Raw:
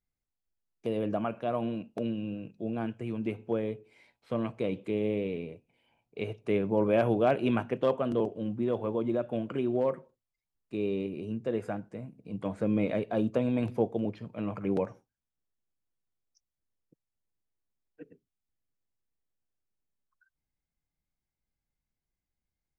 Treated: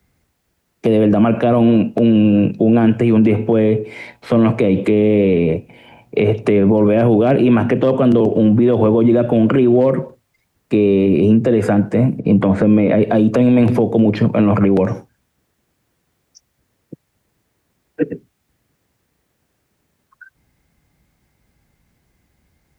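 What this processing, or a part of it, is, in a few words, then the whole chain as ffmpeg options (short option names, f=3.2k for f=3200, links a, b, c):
mastering chain: -filter_complex "[0:a]highpass=60,equalizer=f=1.9k:t=o:w=0.84:g=4,acrossover=split=140|390|2400[a][b][c][d];[a]acompressor=threshold=-48dB:ratio=4[e];[b]acompressor=threshold=-34dB:ratio=4[f];[c]acompressor=threshold=-38dB:ratio=4[g];[d]acompressor=threshold=-50dB:ratio=4[h];[e][f][g][h]amix=inputs=4:normalize=0,acompressor=threshold=-34dB:ratio=2,tiltshelf=f=1.1k:g=4,alimiter=level_in=31.5dB:limit=-1dB:release=50:level=0:latency=1,asettb=1/sr,asplit=3[i][j][k];[i]atrim=end=12.194[l];[j]atrim=start=12.19:end=13.03,asetpts=PTS-STARTPTS,afade=t=in:d=0.004:c=qsin,afade=t=out:st=0.836:d=0.004:c=qsin,aemphasis=mode=reproduction:type=50fm[m];[k]atrim=start=13.026[n];[l][m]acrossfade=d=0.004:c1=hsin:c2=qsin[o];[o][n]acrossfade=d=0.004:c1=qsin:c2=hsin,volume=-4.5dB"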